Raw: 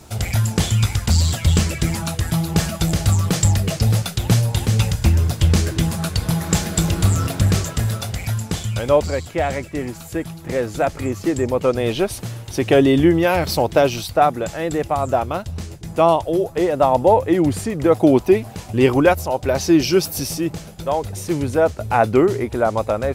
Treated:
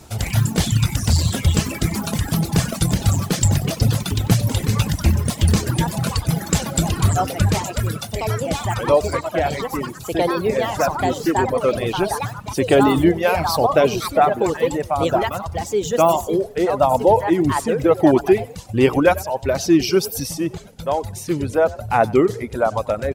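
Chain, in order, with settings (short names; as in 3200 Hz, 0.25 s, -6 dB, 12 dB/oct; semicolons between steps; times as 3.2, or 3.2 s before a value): echoes that change speed 0.101 s, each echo +4 st, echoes 3, each echo -6 dB; frequency-shifting echo 94 ms, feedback 37%, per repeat +37 Hz, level -11.5 dB; reverb removal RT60 1.1 s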